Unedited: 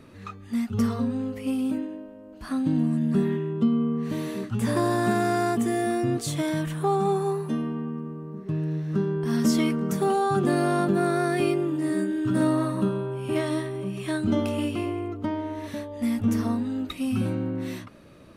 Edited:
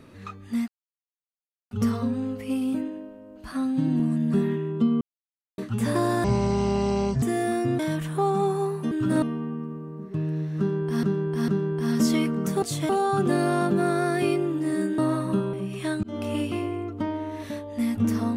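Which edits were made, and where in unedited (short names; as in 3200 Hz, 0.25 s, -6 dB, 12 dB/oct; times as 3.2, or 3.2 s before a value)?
0.68 insert silence 1.03 s
2.49–2.81 stretch 1.5×
3.82–4.39 mute
5.05–5.61 speed 57%
6.18–6.45 move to 10.07
8.93–9.38 loop, 3 plays
12.16–12.47 move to 7.57
13.02–13.77 cut
14.27–14.56 fade in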